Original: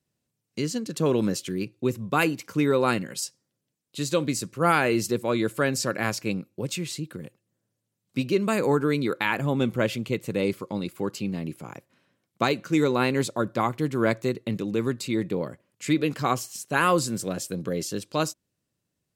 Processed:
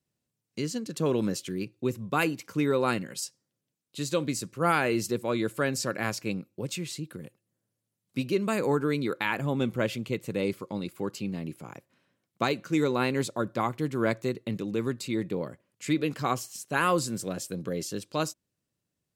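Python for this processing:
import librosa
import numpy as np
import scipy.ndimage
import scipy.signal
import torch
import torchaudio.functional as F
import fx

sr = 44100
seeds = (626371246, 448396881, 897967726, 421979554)

y = fx.peak_eq(x, sr, hz=11000.0, db=6.0, octaves=0.32, at=(7.1, 8.36))
y = y * 10.0 ** (-3.5 / 20.0)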